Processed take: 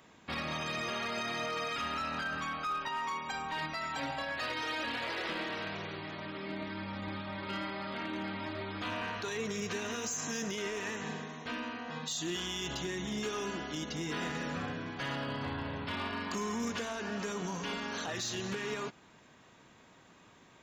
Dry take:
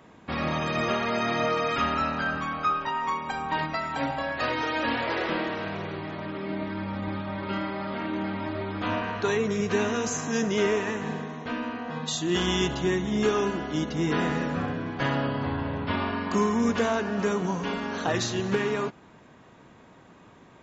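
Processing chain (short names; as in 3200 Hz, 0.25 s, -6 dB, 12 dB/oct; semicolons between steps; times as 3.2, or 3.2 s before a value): high shelf 2000 Hz +12 dB; limiter -18 dBFS, peak gain reduction 10 dB; hard clip -21 dBFS, distortion -23 dB; gain -9 dB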